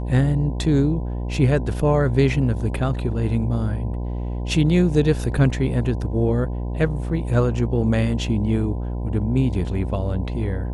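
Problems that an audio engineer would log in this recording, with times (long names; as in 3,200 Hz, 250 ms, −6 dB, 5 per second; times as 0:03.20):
mains buzz 60 Hz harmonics 17 −26 dBFS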